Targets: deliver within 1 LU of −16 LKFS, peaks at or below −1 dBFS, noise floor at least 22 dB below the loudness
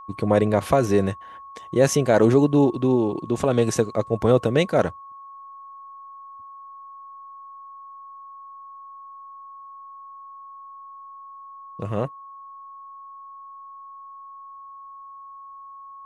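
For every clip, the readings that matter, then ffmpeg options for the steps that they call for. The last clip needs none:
interfering tone 1,100 Hz; level of the tone −39 dBFS; integrated loudness −21.0 LKFS; sample peak −4.5 dBFS; target loudness −16.0 LKFS
→ -af "bandreject=frequency=1100:width=30"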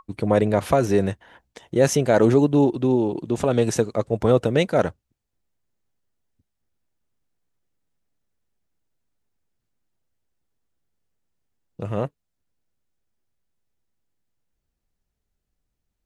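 interfering tone none found; integrated loudness −21.0 LKFS; sample peak −4.0 dBFS; target loudness −16.0 LKFS
→ -af "volume=5dB,alimiter=limit=-1dB:level=0:latency=1"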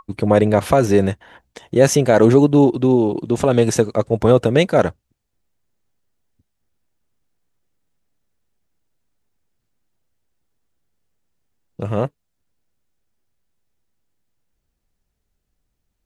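integrated loudness −16.0 LKFS; sample peak −1.0 dBFS; background noise floor −74 dBFS

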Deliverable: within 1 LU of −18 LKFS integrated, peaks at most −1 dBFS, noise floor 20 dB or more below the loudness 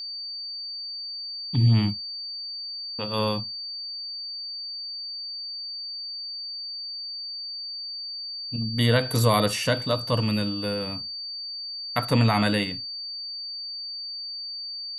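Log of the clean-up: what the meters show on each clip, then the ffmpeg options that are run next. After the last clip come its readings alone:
interfering tone 4,600 Hz; level of the tone −32 dBFS; integrated loudness −27.5 LKFS; sample peak −8.0 dBFS; target loudness −18.0 LKFS
→ -af "bandreject=frequency=4600:width=30"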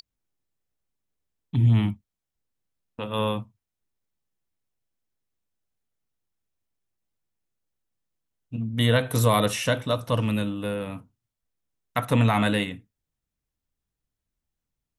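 interfering tone none found; integrated loudness −24.5 LKFS; sample peak −8.0 dBFS; target loudness −18.0 LKFS
→ -af "volume=6.5dB"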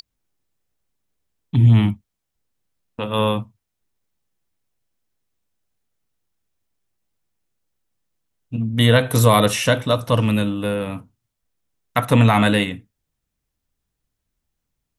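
integrated loudness −18.0 LKFS; sample peak −1.5 dBFS; background noise floor −79 dBFS

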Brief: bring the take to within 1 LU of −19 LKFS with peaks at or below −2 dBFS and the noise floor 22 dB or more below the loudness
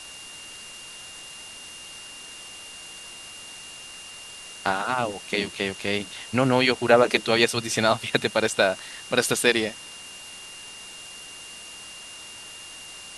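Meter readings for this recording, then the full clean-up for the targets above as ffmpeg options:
interfering tone 2,800 Hz; level of the tone −42 dBFS; background noise floor −42 dBFS; target noise floor −45 dBFS; integrated loudness −23.0 LKFS; sample peak −2.0 dBFS; target loudness −19.0 LKFS
→ -af "bandreject=frequency=2800:width=30"
-af "afftdn=noise_reduction=6:noise_floor=-42"
-af "volume=4dB,alimiter=limit=-2dB:level=0:latency=1"

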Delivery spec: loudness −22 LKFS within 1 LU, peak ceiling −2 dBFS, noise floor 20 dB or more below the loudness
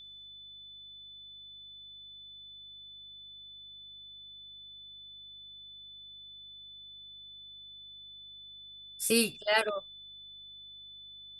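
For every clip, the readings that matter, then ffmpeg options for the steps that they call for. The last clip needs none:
mains hum 50 Hz; hum harmonics up to 200 Hz; level of the hum −67 dBFS; interfering tone 3,500 Hz; level of the tone −47 dBFS; integrated loudness −38.5 LKFS; sample peak −12.5 dBFS; target loudness −22.0 LKFS
→ -af "bandreject=frequency=50:width_type=h:width=4,bandreject=frequency=100:width_type=h:width=4,bandreject=frequency=150:width_type=h:width=4,bandreject=frequency=200:width_type=h:width=4"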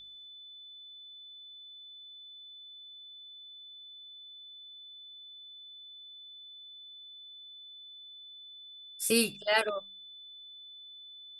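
mains hum none found; interfering tone 3,500 Hz; level of the tone −47 dBFS
→ -af "bandreject=frequency=3500:width=30"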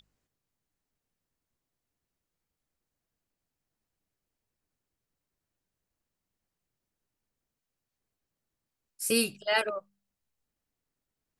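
interfering tone none found; integrated loudness −28.5 LKFS; sample peak −12.5 dBFS; target loudness −22.0 LKFS
→ -af "volume=6.5dB"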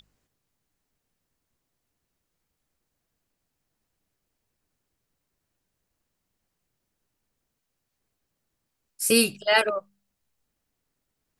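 integrated loudness −22.0 LKFS; sample peak −6.0 dBFS; background noise floor −81 dBFS

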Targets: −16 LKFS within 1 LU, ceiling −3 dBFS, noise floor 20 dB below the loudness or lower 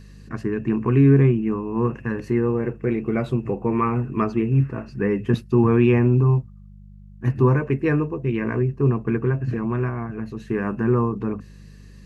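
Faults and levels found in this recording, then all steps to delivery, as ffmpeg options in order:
mains hum 50 Hz; hum harmonics up to 200 Hz; level of the hum −40 dBFS; integrated loudness −21.5 LKFS; sample peak −5.5 dBFS; target loudness −16.0 LKFS
→ -af "bandreject=frequency=50:width_type=h:width=4,bandreject=frequency=100:width_type=h:width=4,bandreject=frequency=150:width_type=h:width=4,bandreject=frequency=200:width_type=h:width=4"
-af "volume=5.5dB,alimiter=limit=-3dB:level=0:latency=1"

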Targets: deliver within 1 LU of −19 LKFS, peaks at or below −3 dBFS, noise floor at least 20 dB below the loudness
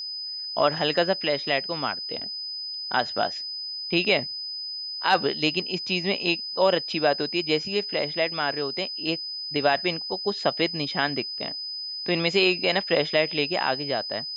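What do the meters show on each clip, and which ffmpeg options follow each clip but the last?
interfering tone 5,000 Hz; level of the tone −31 dBFS; integrated loudness −25.0 LKFS; sample peak −7.0 dBFS; target loudness −19.0 LKFS
→ -af "bandreject=frequency=5000:width=30"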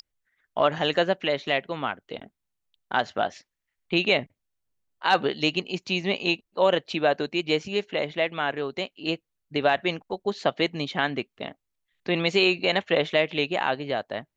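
interfering tone none found; integrated loudness −25.5 LKFS; sample peak −7.5 dBFS; target loudness −19.0 LKFS
→ -af "volume=6.5dB,alimiter=limit=-3dB:level=0:latency=1"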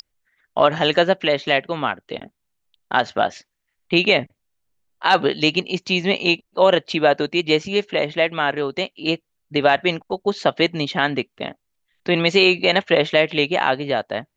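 integrated loudness −19.5 LKFS; sample peak −3.0 dBFS; background noise floor −76 dBFS

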